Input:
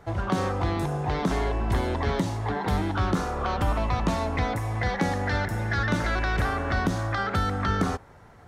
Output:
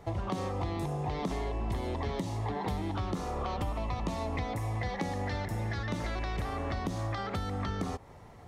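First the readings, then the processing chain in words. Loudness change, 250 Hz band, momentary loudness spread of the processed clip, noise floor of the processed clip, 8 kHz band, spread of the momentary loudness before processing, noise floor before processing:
-8.0 dB, -7.5 dB, 1 LU, -51 dBFS, -7.5 dB, 2 LU, -50 dBFS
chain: compression, threshold -30 dBFS, peak gain reduction 10 dB; peaking EQ 1.5 kHz -12 dB 0.33 oct

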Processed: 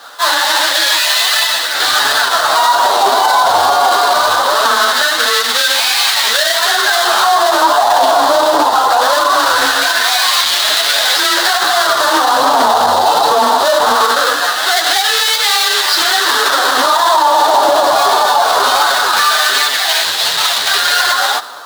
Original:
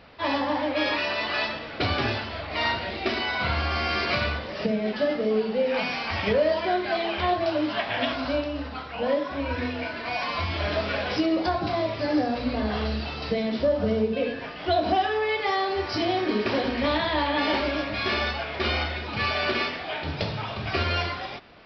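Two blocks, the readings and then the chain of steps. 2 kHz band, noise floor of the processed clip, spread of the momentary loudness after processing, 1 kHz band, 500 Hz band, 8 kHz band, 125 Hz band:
+15.5 dB, -16 dBFS, 1 LU, +19.0 dB, +10.0 dB, no reading, under -10 dB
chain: square wave that keeps the level; chorus voices 2, 1.4 Hz, delay 10 ms, depth 3 ms; LFO high-pass sine 0.21 Hz 840–2100 Hz; level rider gain up to 7 dB; bass shelf 70 Hz +11 dB; compression, threshold -19 dBFS, peak gain reduction 9 dB; FFT filter 770 Hz 0 dB, 1.1 kHz -5 dB, 1.6 kHz -9 dB, 2.3 kHz -22 dB, 3.8 kHz 0 dB, 5.6 kHz -7 dB; frequency shift +21 Hz; loudness maximiser +24 dB; loudspeaker Doppler distortion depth 0.15 ms; trim -1 dB

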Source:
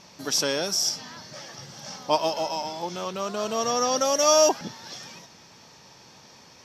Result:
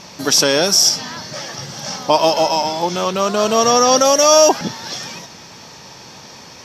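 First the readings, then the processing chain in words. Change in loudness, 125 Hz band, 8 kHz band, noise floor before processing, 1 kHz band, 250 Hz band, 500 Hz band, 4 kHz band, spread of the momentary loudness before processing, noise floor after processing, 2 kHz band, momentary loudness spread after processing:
+10.0 dB, +12.0 dB, +10.5 dB, -52 dBFS, +10.5 dB, +11.5 dB, +10.0 dB, +11.0 dB, 21 LU, -39 dBFS, +11.0 dB, 17 LU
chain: loudness maximiser +13.5 dB; trim -1 dB

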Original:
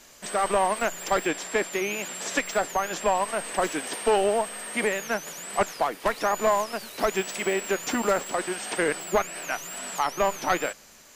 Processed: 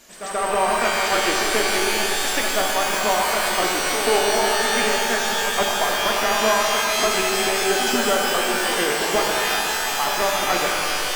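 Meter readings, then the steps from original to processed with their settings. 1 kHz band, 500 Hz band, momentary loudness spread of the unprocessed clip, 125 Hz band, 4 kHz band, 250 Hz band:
+6.0 dB, +4.0 dB, 7 LU, +3.5 dB, +14.5 dB, +4.0 dB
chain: reverse echo 134 ms -8.5 dB; pitch-shifted reverb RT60 3.7 s, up +12 st, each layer -2 dB, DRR -0.5 dB

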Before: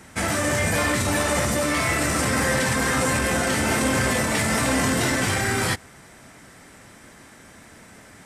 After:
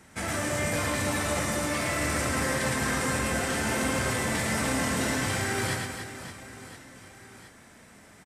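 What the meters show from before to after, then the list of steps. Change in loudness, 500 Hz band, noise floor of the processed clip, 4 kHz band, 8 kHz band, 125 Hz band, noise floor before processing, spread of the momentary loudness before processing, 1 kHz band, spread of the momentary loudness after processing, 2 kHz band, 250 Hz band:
-6.0 dB, -6.0 dB, -53 dBFS, -6.0 dB, -6.0 dB, -5.5 dB, -48 dBFS, 2 LU, -6.0 dB, 13 LU, -6.0 dB, -6.0 dB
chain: reverse bouncing-ball echo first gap 110 ms, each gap 1.6×, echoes 5; trim -8 dB

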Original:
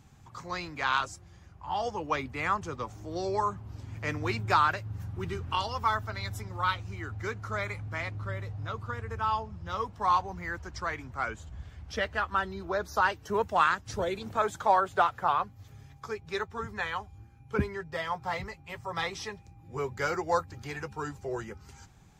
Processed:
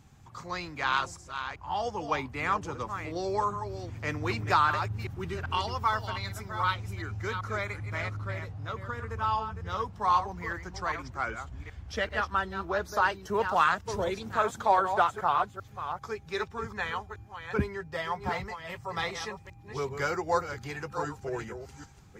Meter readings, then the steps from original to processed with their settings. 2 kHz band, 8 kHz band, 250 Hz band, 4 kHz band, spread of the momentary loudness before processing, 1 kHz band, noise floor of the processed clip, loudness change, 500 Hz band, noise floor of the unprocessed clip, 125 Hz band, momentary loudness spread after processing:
+0.5 dB, +0.5 dB, +0.5 dB, +0.5 dB, 14 LU, +0.5 dB, -51 dBFS, +0.5 dB, +0.5 dB, -54 dBFS, +0.5 dB, 12 LU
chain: chunks repeated in reverse 390 ms, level -8.5 dB

